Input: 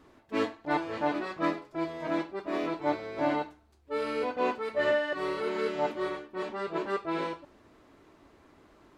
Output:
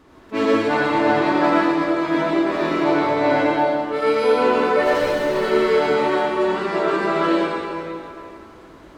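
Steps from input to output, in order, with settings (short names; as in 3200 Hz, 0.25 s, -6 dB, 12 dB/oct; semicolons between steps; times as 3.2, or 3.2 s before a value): 4.83–5.35 median filter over 41 samples; reverb RT60 2.6 s, pre-delay 68 ms, DRR -6.5 dB; gain +6 dB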